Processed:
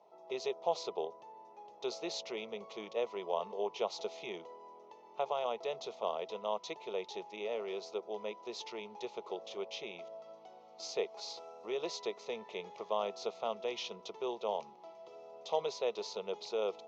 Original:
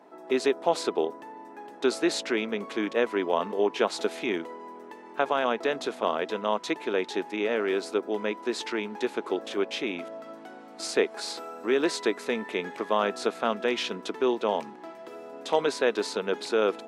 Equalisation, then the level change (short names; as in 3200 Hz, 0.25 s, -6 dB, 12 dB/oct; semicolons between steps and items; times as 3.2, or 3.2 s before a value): elliptic low-pass 6400 Hz, stop band 40 dB; fixed phaser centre 670 Hz, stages 4; -6.5 dB